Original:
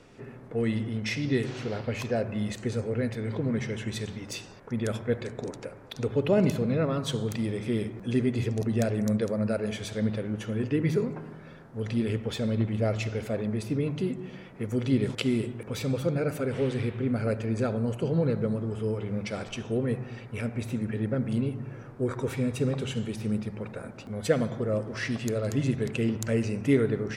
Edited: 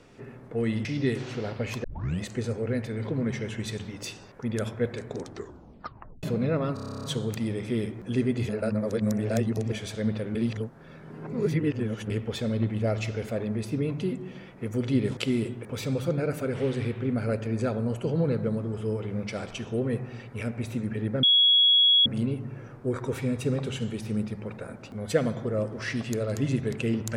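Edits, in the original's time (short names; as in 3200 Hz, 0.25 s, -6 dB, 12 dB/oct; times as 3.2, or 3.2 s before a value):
0.85–1.13 cut
2.12 tape start 0.37 s
5.46 tape stop 1.05 s
7.02 stutter 0.03 s, 11 plays
8.47–9.7 reverse
10.33–12.08 reverse
21.21 add tone 3340 Hz -16 dBFS 0.83 s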